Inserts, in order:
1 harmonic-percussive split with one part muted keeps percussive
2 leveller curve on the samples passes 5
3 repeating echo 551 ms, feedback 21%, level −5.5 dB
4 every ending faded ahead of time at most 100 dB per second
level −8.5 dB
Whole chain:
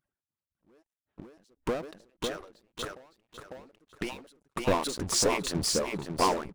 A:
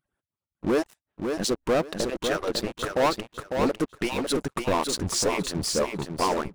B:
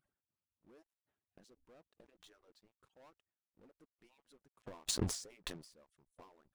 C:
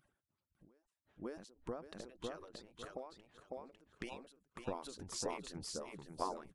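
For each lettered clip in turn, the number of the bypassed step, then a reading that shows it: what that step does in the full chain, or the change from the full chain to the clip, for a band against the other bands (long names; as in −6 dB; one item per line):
4, change in crest factor −6.0 dB
3, change in momentary loudness spread −2 LU
2, change in crest factor +7.0 dB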